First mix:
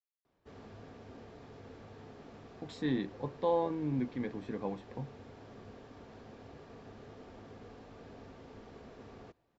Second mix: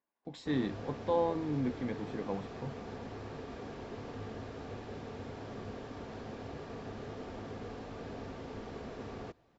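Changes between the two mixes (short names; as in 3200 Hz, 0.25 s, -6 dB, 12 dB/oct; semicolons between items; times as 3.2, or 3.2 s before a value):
speech: entry -2.35 s; background +8.0 dB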